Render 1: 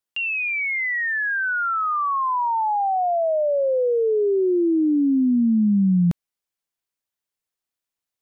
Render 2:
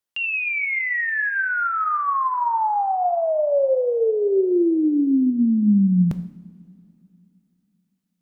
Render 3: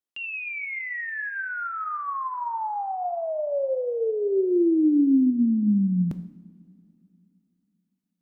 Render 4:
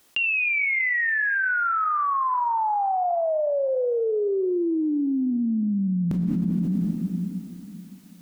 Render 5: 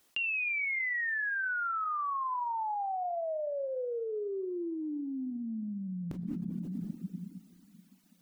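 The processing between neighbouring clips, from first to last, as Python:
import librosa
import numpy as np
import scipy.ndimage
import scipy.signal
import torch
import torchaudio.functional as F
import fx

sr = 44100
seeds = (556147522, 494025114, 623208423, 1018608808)

y1 = fx.rev_double_slope(x, sr, seeds[0], early_s=0.67, late_s=3.1, knee_db=-16, drr_db=9.5)
y2 = fx.peak_eq(y1, sr, hz=290.0, db=8.5, octaves=0.89)
y2 = y2 * 10.0 ** (-8.5 / 20.0)
y3 = fx.env_flatten(y2, sr, amount_pct=100)
y3 = y3 * 10.0 ** (-7.0 / 20.0)
y4 = fx.dereverb_blind(y3, sr, rt60_s=2.0)
y4 = y4 * 10.0 ** (-8.5 / 20.0)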